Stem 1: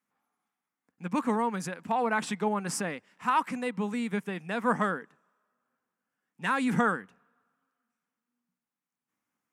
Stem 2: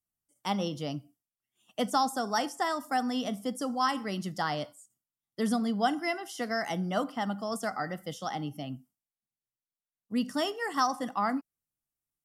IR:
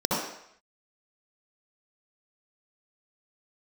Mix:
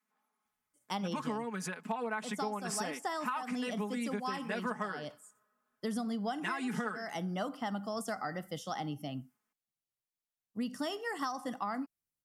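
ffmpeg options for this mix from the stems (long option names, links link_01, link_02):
-filter_complex "[0:a]equalizer=frequency=71:width=0.65:gain=-13.5,aecho=1:1:4.7:0.85,volume=-2.5dB,asplit=2[link_01][link_02];[1:a]acontrast=82,adelay=450,volume=-9dB[link_03];[link_02]apad=whole_len=559805[link_04];[link_03][link_04]sidechaincompress=threshold=-28dB:ratio=8:attack=41:release=840[link_05];[link_01][link_05]amix=inputs=2:normalize=0,acompressor=threshold=-32dB:ratio=10"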